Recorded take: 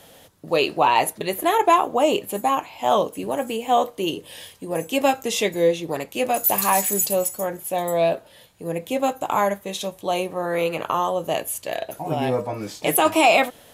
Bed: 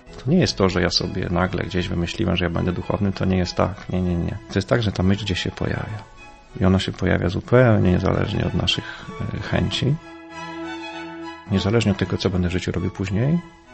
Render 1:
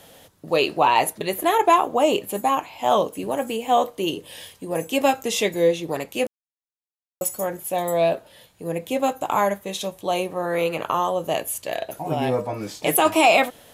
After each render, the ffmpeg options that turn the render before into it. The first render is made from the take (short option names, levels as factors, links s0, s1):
-filter_complex "[0:a]asplit=3[s0][s1][s2];[s0]atrim=end=6.27,asetpts=PTS-STARTPTS,afade=t=out:st=6.266:d=0.004:c=hsin[s3];[s1]atrim=start=6.27:end=7.21,asetpts=PTS-STARTPTS,volume=0[s4];[s2]atrim=start=7.21,asetpts=PTS-STARTPTS,afade=t=in:d=0.004:c=hsin[s5];[s3][s4][s5]concat=n=3:v=0:a=1"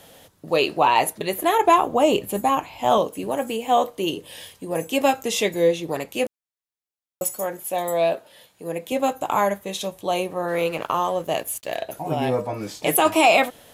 -filter_complex "[0:a]asettb=1/sr,asplit=3[s0][s1][s2];[s0]atrim=end=1.644[s3];[s1]atrim=start=1.64:end=2.98,asetpts=PTS-STARTPTS,afade=t=in:d=0.004:c=qsin,afade=t=out:st=1.336:d=0.004:c=qsin,lowshelf=f=140:g=12[s4];[s2]atrim=start=2.976[s5];[s3][s4]acrossfade=d=0.004:c1=hsin:c2=qsin[s6];[s6][s5]acrossfade=d=0.004:c1=qsin:c2=hsin,asettb=1/sr,asplit=3[s7][s8][s9];[s7]atrim=end=7.324[s10];[s8]atrim=start=7.32:end=8.92,asetpts=PTS-STARTPTS,afade=t=in:d=0.004:c=qsin,afade=t=out:st=1.596:d=0.004:c=qsin,highpass=f=260:p=1[s11];[s9]atrim=start=8.916[s12];[s10][s11]acrossfade=d=0.004:c1=hsin:c2=qsin[s13];[s13][s12]acrossfade=d=0.004:c1=qsin:c2=hsin,asettb=1/sr,asplit=3[s14][s15][s16];[s14]atrim=end=10.484[s17];[s15]atrim=start=10.48:end=11.82,asetpts=PTS-STARTPTS,afade=t=in:d=0.004:c=qsin,afade=t=out:st=1.336:d=0.004:c=qsin,aeval=exprs='sgn(val(0))*max(abs(val(0))-0.00473,0)':c=same[s18];[s16]atrim=start=11.816[s19];[s17][s18]acrossfade=d=0.004:c1=hsin:c2=qsin[s20];[s20][s19]acrossfade=d=0.004:c1=qsin:c2=hsin"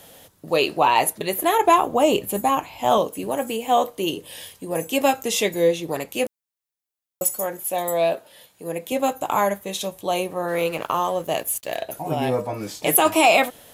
-af "highshelf=f=8800:g=6.5"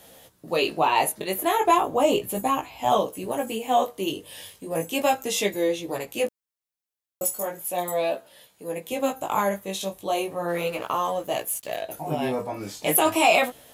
-af "flanger=delay=15:depth=5.9:speed=0.36"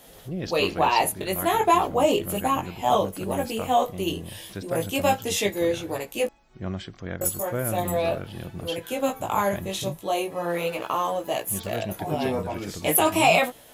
-filter_complex "[1:a]volume=0.188[s0];[0:a][s0]amix=inputs=2:normalize=0"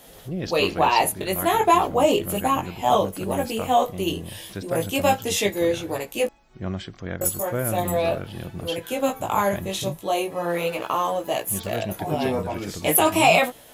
-af "volume=1.26"